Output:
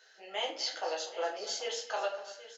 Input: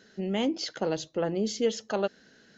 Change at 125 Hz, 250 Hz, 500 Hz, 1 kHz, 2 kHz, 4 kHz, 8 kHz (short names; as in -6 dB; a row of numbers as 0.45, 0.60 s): under -35 dB, -24.5 dB, -7.0 dB, 0.0 dB, 0.0 dB, +1.0 dB, n/a